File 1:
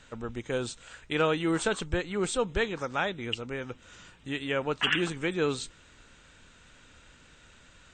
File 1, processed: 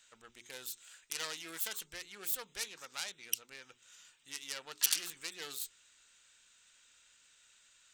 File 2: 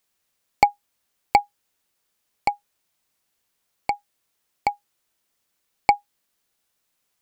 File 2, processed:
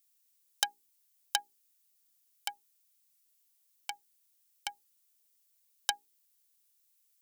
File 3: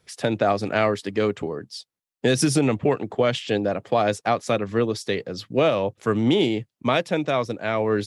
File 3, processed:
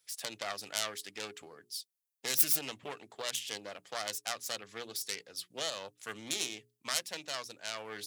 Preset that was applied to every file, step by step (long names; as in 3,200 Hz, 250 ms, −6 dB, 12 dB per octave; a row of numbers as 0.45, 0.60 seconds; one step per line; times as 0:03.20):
phase distortion by the signal itself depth 0.25 ms
first-order pre-emphasis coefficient 0.97
mains-hum notches 60/120/180/240/300/360/420 Hz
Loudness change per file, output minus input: −8.0, −12.0, −12.5 LU